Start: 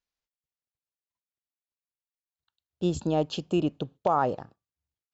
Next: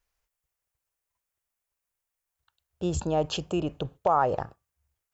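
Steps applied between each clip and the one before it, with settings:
low-shelf EQ 81 Hz +9 dB
in parallel at −2.5 dB: compressor whose output falls as the input rises −35 dBFS, ratio −1
on the sum: octave-band graphic EQ 125/250/4,000 Hz −4/−10/−8 dB
level +1.5 dB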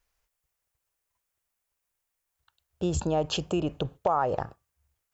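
downward compressor 2 to 1, threshold −28 dBFS, peak gain reduction 6 dB
level +3 dB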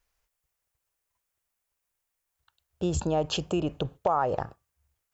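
no processing that can be heard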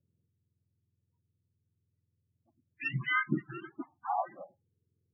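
frequency axis turned over on the octave scale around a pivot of 980 Hz
low-pass filter sweep 2,100 Hz → 450 Hz, 0:03.02–0:04.70
spectral peaks only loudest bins 16
level −4.5 dB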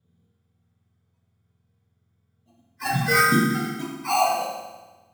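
sample-rate reduction 3,500 Hz, jitter 0%
convolution reverb RT60 1.2 s, pre-delay 3 ms, DRR −6.5 dB
level +5 dB

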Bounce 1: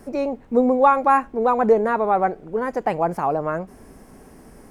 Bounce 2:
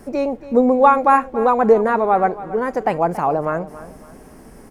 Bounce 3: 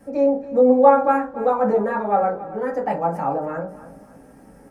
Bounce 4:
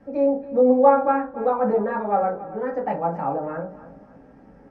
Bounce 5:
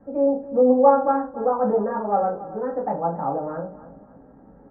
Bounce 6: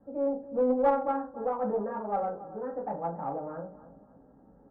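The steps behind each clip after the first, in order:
repeating echo 279 ms, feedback 34%, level −16 dB; level +3 dB
convolution reverb RT60 0.30 s, pre-delay 3 ms, DRR −6 dB; level −12.5 dB
high-frequency loss of the air 210 metres; level −1.5 dB
low-pass filter 1,400 Hz 24 dB per octave
one-sided soft clipper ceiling −5.5 dBFS; low-pass that shuts in the quiet parts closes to 1,500 Hz, open at −13.5 dBFS; level −8.5 dB

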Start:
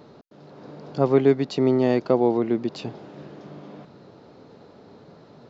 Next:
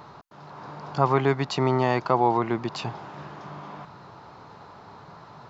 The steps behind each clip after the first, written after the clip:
octave-band graphic EQ 250/500/1,000/4,000 Hz −10/−10/+10/−3 dB
in parallel at −1 dB: brickwall limiter −18.5 dBFS, peak gain reduction 9 dB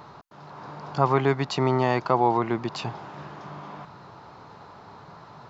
no processing that can be heard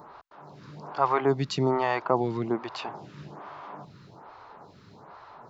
phaser with staggered stages 1.2 Hz

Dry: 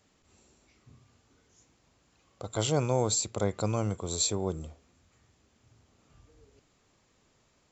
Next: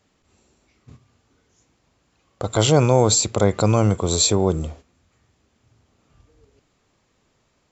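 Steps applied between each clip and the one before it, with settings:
noise gate −54 dBFS, range −11 dB
high-shelf EQ 7,100 Hz −6.5 dB
in parallel at −1.5 dB: brickwall limiter −22 dBFS, peak gain reduction 8 dB
on the sum: level +8.5 dB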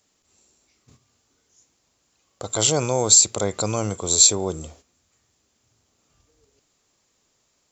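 bass and treble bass −5 dB, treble +13 dB
level −5.5 dB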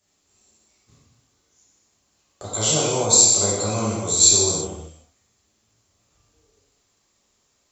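reverb whose tail is shaped and stops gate 400 ms falling, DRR −7 dB
level −7 dB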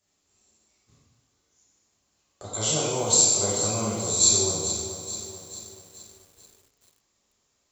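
feedback echo at a low word length 434 ms, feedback 55%, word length 7 bits, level −10 dB
level −5 dB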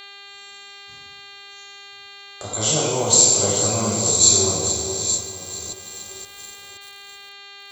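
delay that plays each chunk backwards 521 ms, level −9.5 dB
hum with harmonics 400 Hz, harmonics 11, −54 dBFS 0 dB per octave
one half of a high-frequency compander encoder only
level +5 dB

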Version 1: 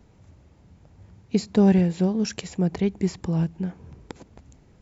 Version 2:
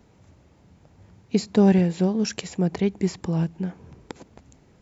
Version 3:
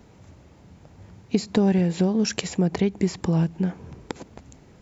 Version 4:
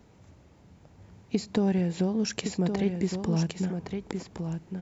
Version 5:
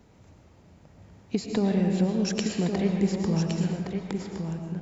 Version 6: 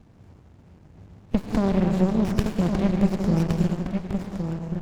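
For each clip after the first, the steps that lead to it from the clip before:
low-shelf EQ 92 Hz −10 dB; level +2 dB
downward compressor 4 to 1, threshold −23 dBFS, peak gain reduction 9 dB; level +5 dB
single-tap delay 1,115 ms −6.5 dB; level −5.5 dB
convolution reverb RT60 1.3 s, pre-delay 75 ms, DRR 3 dB
windowed peak hold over 65 samples; level +5 dB

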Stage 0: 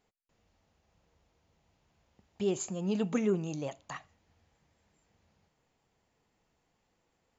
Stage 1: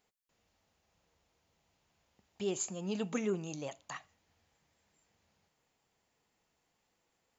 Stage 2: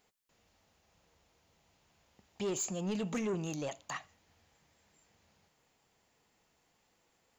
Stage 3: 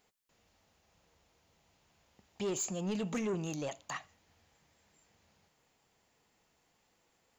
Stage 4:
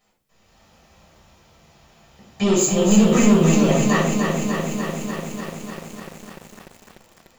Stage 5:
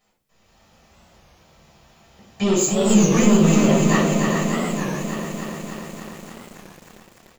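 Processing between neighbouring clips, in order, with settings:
spectral tilt +1.5 dB per octave; level −2.5 dB
in parallel at −1.5 dB: brickwall limiter −32 dBFS, peak gain reduction 9 dB; on the sum: soft clipping −29.5 dBFS, distortion −13 dB
no processing that can be heard
automatic gain control gain up to 8.5 dB; rectangular room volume 530 cubic metres, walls furnished, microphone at 6.2 metres; feedback echo at a low word length 296 ms, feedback 80%, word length 7 bits, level −5 dB
single-tap delay 409 ms −5.5 dB; wow of a warped record 33 1/3 rpm, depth 160 cents; level −1 dB

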